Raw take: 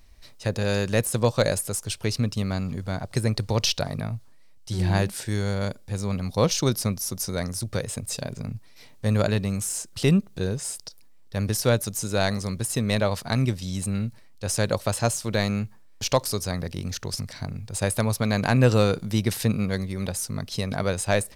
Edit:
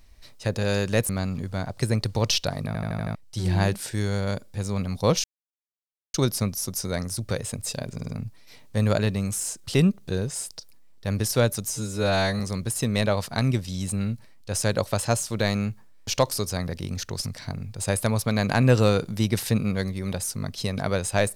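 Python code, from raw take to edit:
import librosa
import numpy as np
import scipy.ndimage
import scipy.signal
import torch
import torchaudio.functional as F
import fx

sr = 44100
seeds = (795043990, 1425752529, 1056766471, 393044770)

y = fx.edit(x, sr, fx.cut(start_s=1.09, length_s=1.34),
    fx.stutter_over(start_s=4.01, slice_s=0.08, count=6),
    fx.insert_silence(at_s=6.58, length_s=0.9),
    fx.stutter(start_s=8.38, slice_s=0.05, count=4),
    fx.stretch_span(start_s=11.99, length_s=0.35, factor=2.0), tone=tone)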